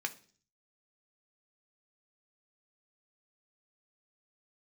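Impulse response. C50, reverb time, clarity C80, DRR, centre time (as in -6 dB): 17.5 dB, 0.45 s, 22.5 dB, 5.5 dB, 5 ms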